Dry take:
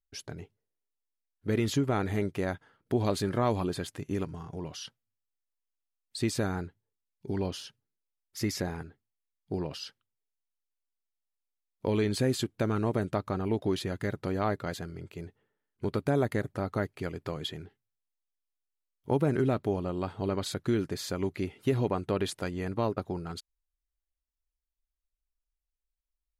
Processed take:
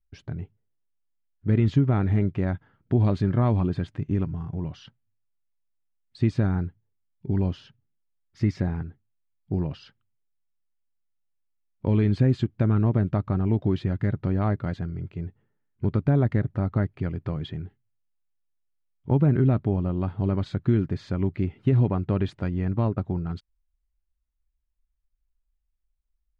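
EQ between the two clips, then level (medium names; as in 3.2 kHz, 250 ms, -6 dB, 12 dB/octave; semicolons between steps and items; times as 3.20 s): distance through air 120 m; tone controls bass +12 dB, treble -10 dB; peaking EQ 460 Hz -3.5 dB 0.32 oct; 0.0 dB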